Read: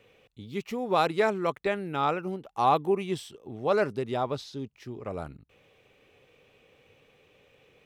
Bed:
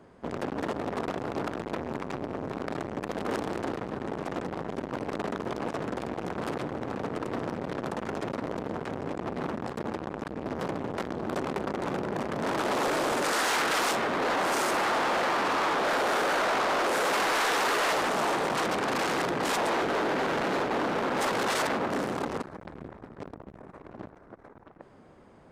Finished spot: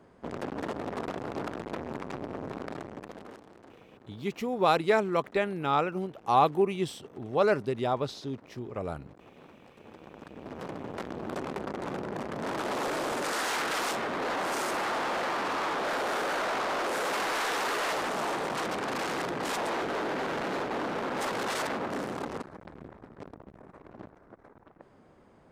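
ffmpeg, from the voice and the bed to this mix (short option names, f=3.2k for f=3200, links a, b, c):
-filter_complex "[0:a]adelay=3700,volume=0.5dB[a];[1:a]volume=14dB,afade=t=out:st=2.51:d=0.89:silence=0.125893,afade=t=in:st=9.79:d=1.29:silence=0.141254[b];[a][b]amix=inputs=2:normalize=0"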